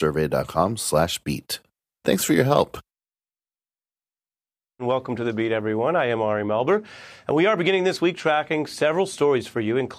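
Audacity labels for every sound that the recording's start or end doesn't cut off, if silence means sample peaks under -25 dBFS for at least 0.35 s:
2.060000	2.750000	sound
4.810000	6.790000	sound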